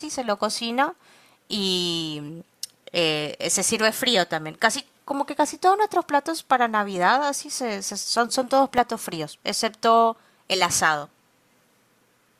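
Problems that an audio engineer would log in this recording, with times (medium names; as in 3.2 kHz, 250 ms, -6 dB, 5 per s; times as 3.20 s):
8.78 s: dropout 2.8 ms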